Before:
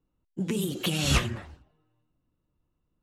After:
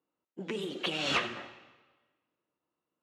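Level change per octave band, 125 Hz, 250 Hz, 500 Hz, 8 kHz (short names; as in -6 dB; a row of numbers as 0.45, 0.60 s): -17.5, -9.0, -2.5, -13.5 dB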